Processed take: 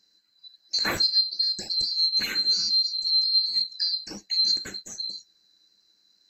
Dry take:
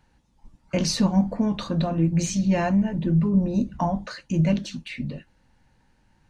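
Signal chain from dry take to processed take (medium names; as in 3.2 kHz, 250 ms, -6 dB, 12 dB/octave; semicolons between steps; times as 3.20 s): split-band scrambler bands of 4 kHz; graphic EQ with 31 bands 200 Hz +11 dB, 315 Hz +10 dB, 1.6 kHz +10 dB; trim -3 dB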